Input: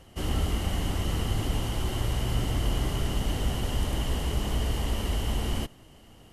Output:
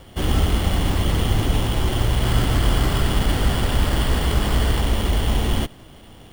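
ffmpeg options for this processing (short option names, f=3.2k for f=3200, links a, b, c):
-filter_complex "[0:a]asettb=1/sr,asplit=3[a][b][c];[a]atrim=end=2.234[d];[b]atrim=start=2.23:end=4.81,asetpts=PTS-STARTPTS,afade=t=in:d=0.004:c=qsin,afade=t=out:st=2.576:d=0.004:c=qsin,equalizer=f=1.5k:t=o:w=0.85:g=6[e];[c]atrim=start=4.806[f];[d][e]acrossfade=d=0.004:c1=hsin:c2=qsin[g];[g][f]acrossfade=d=0.004:c1=qsin:c2=hsin,acrusher=samples=7:mix=1:aa=0.000001,volume=8.5dB"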